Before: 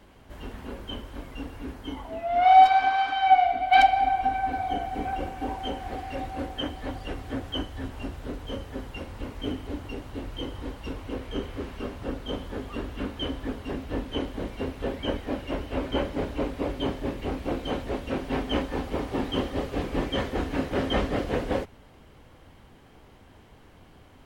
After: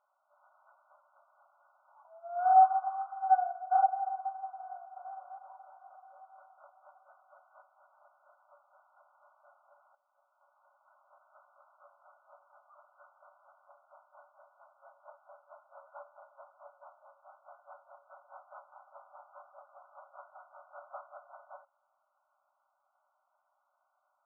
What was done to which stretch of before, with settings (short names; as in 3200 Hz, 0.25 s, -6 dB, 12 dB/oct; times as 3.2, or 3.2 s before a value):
4.71–5.13 echo throw 0.25 s, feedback 55%, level -2 dB
9.95–11.29 fade in, from -14 dB
whole clip: FFT band-pass 550–1500 Hz; tilt shelf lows -6.5 dB; upward expander 1.5:1, over -37 dBFS; gain -4 dB